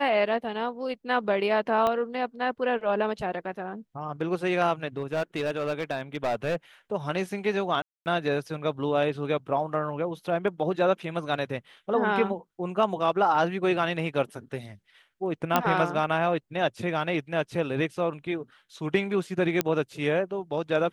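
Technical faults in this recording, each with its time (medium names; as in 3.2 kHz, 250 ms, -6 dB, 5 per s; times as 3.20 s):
1.87 s: pop -14 dBFS
4.97–6.56 s: clipped -23 dBFS
7.82–8.06 s: dropout 239 ms
15.56 s: pop -7 dBFS
19.61 s: pop -8 dBFS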